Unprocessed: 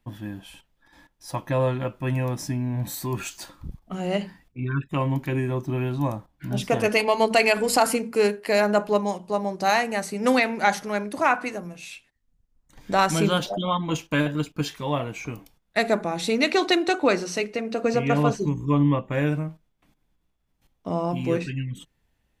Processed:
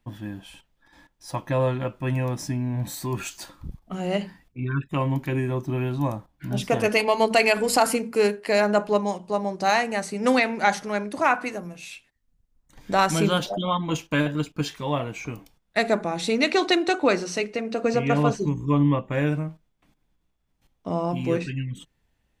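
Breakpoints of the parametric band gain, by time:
parametric band 12,000 Hz 0.25 octaves
−7.5 dB
from 0:03.17 −1 dB
from 0:08.35 −9 dB
from 0:11.24 −0.5 dB
from 0:14.08 −7.5 dB

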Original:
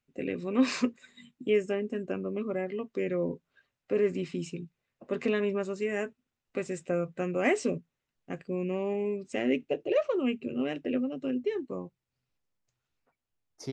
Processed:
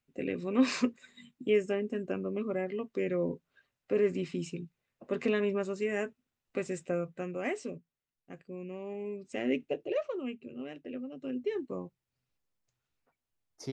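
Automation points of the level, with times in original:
0:06.77 −1 dB
0:07.67 −10 dB
0:08.80 −10 dB
0:09.60 −2 dB
0:10.44 −10.5 dB
0:10.98 −10.5 dB
0:11.56 −1.5 dB

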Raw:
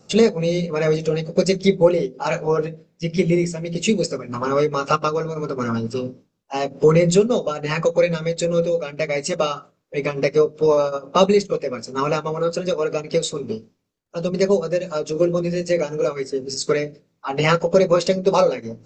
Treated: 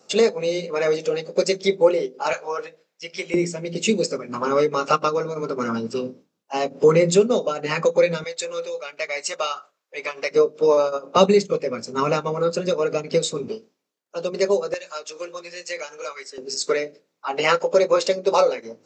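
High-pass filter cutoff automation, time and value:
360 Hz
from 0:02.33 810 Hz
from 0:03.34 210 Hz
from 0:08.24 830 Hz
from 0:10.31 280 Hz
from 0:11.17 120 Hz
from 0:13.48 370 Hz
from 0:14.74 1,100 Hz
from 0:16.38 400 Hz

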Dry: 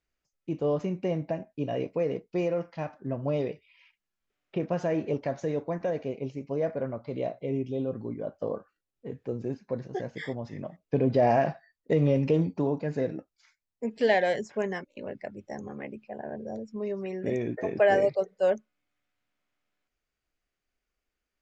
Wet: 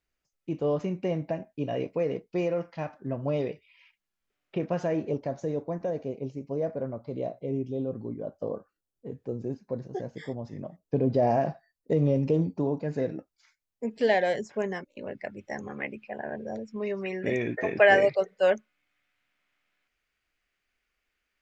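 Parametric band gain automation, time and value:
parametric band 2,200 Hz 1.9 octaves
0:04.79 +1 dB
0:05.22 −8.5 dB
0:12.56 −8.5 dB
0:13.02 −1 dB
0:14.96 −1 dB
0:15.43 +10.5 dB

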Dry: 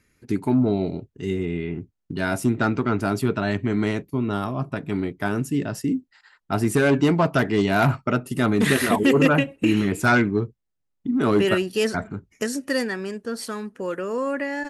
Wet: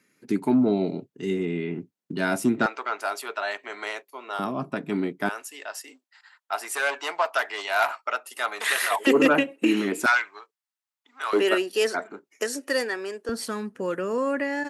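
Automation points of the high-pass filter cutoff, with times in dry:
high-pass filter 24 dB per octave
170 Hz
from 0:02.66 600 Hz
from 0:04.39 180 Hz
from 0:05.29 680 Hz
from 0:09.07 250 Hz
from 0:10.06 890 Hz
from 0:11.33 330 Hz
from 0:13.29 79 Hz

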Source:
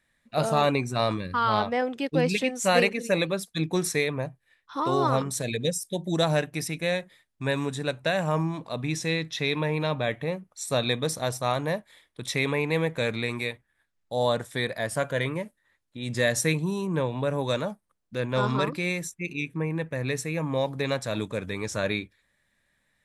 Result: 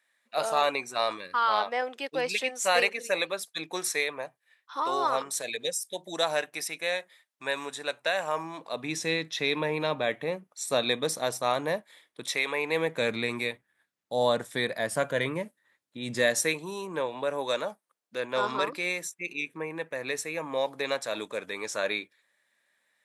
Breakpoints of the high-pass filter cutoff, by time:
0:08.35 600 Hz
0:09.02 260 Hz
0:12.20 260 Hz
0:12.44 660 Hz
0:13.09 180 Hz
0:16.11 180 Hz
0:16.54 440 Hz

